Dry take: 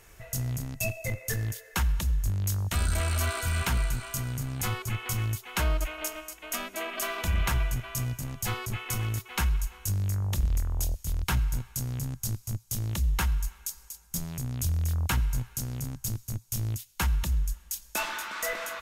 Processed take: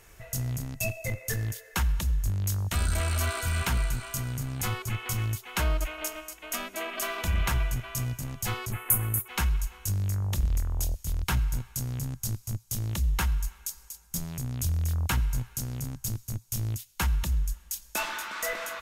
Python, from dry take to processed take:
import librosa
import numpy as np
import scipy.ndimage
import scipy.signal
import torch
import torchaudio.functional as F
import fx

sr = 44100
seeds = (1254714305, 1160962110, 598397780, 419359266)

y = fx.curve_eq(x, sr, hz=(1700.0, 5300.0, 9800.0), db=(0, -15, 14), at=(8.72, 9.28))